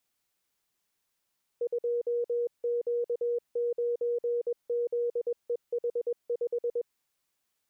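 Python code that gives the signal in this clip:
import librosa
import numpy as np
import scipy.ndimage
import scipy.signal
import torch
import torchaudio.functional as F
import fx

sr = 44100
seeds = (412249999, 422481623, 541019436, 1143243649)

y = fx.morse(sr, text='2Q9ZEH5', wpm=21, hz=477.0, level_db=-26.0)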